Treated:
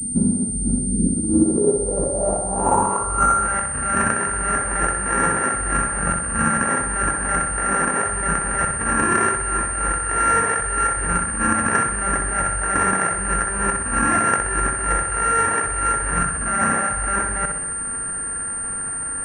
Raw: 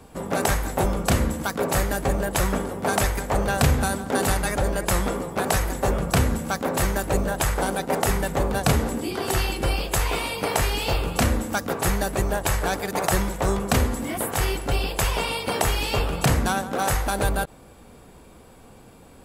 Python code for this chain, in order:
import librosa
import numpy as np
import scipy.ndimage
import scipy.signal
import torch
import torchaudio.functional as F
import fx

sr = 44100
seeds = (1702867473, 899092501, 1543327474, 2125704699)

y = np.r_[np.sort(x[:len(x) // 32 * 32].reshape(-1, 32), axis=1).ravel(), x[len(x) // 32 * 32:]]
y = fx.spec_erase(y, sr, start_s=0.78, length_s=0.31, low_hz=560.0, high_hz=2400.0)
y = fx.over_compress(y, sr, threshold_db=-30.0, ratio=-1.0)
y = fx.clip_hard(y, sr, threshold_db=-25.0, at=(9.39, 9.89))
y = fx.filter_sweep_lowpass(y, sr, from_hz=230.0, to_hz=1700.0, start_s=0.86, end_s=3.59, q=6.7)
y = fx.echo_feedback(y, sr, ms=63, feedback_pct=55, wet_db=-6.0)
y = fx.pwm(y, sr, carrier_hz=8900.0)
y = F.gain(torch.from_numpy(y), 2.5).numpy()